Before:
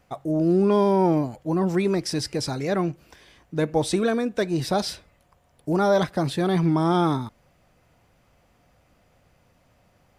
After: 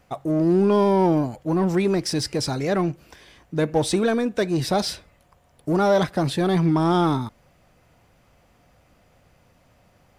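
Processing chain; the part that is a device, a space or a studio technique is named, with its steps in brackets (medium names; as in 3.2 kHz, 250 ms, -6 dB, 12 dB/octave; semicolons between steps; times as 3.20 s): parallel distortion (in parallel at -7.5 dB: hard clipper -25.5 dBFS, distortion -6 dB)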